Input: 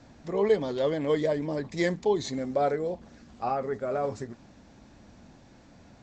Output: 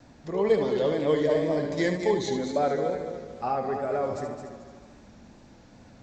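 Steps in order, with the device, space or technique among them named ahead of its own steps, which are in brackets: 1.23–1.75 s: flutter echo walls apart 9.6 m, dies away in 0.55 s; multi-head tape echo (multi-head delay 73 ms, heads first and third, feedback 55%, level -8 dB; wow and flutter)

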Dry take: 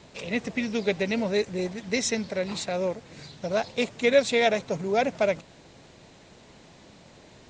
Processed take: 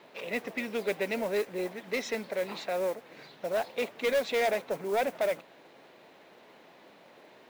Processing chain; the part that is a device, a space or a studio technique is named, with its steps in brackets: carbon microphone (band-pass 360–2800 Hz; saturation -22.5 dBFS, distortion -10 dB; modulation noise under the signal 21 dB)

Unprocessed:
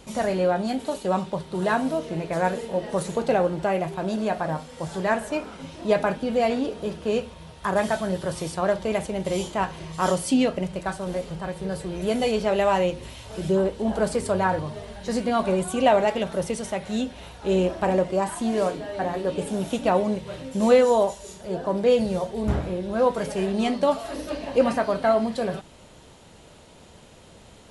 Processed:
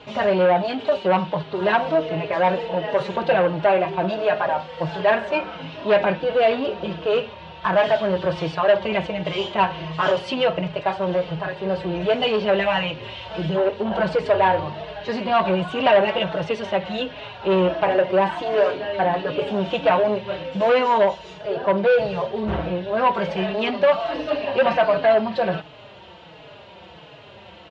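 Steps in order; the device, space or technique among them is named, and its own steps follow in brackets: barber-pole flanger into a guitar amplifier (endless flanger 4.3 ms -1.4 Hz; saturation -22 dBFS, distortion -11 dB; cabinet simulation 110–4000 Hz, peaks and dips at 240 Hz -10 dB, 630 Hz +4 dB, 960 Hz +4 dB, 1.6 kHz +3 dB, 2.8 kHz +7 dB); trim +8.5 dB

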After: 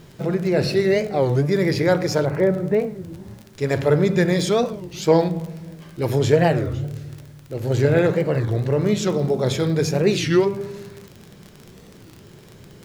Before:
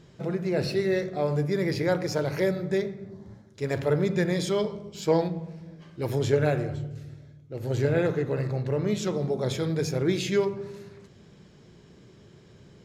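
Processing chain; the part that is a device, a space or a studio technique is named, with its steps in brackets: 2.25–3.14 s: low-pass 1.5 kHz 12 dB/octave; warped LP (warped record 33 1/3 rpm, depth 250 cents; crackle 33 per s -36 dBFS; pink noise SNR 35 dB); trim +7 dB

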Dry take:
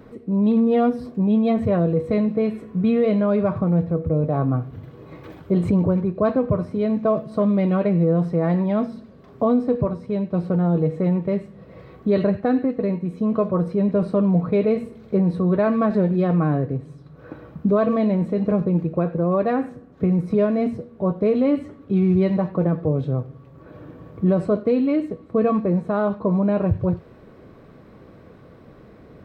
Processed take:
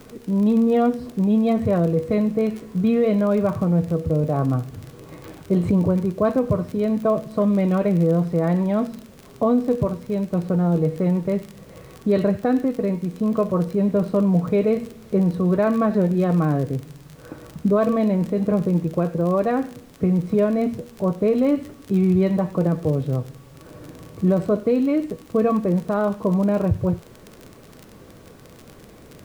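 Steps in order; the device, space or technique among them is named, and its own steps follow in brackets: vinyl LP (crackle 38 per s -28 dBFS; pink noise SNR 33 dB)

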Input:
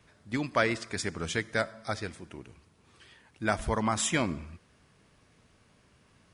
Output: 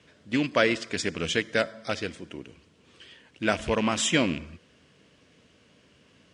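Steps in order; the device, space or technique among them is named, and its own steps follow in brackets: car door speaker with a rattle (rattle on loud lows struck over -34 dBFS, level -29 dBFS; cabinet simulation 83–8100 Hz, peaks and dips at 110 Hz -6 dB, 280 Hz +4 dB, 500 Hz +5 dB, 830 Hz -6 dB, 1.2 kHz -4 dB, 3 kHz +7 dB); trim +3.5 dB

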